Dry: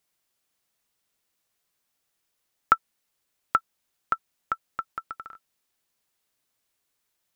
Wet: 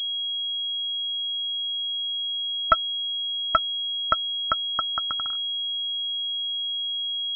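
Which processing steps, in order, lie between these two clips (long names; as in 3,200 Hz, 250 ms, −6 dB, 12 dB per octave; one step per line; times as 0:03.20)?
brick-wall band-stop 330–670 Hz
leveller curve on the samples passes 2
switching amplifier with a slow clock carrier 3,300 Hz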